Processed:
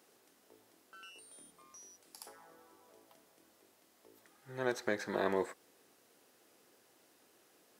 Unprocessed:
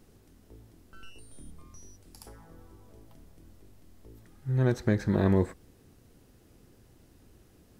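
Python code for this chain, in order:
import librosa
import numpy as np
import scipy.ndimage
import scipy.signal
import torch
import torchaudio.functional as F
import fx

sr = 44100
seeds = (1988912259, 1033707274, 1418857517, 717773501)

y = scipy.signal.sosfilt(scipy.signal.butter(2, 540.0, 'highpass', fs=sr, output='sos'), x)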